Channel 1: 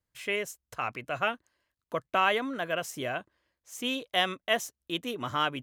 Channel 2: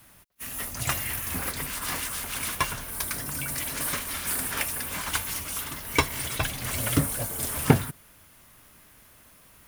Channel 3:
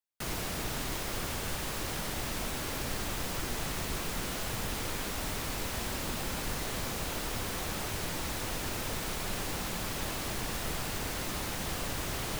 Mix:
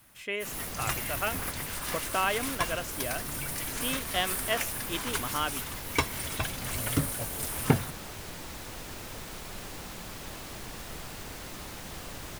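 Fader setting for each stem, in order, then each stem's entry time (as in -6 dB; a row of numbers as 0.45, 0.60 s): -3.0, -4.5, -6.0 dB; 0.00, 0.00, 0.25 s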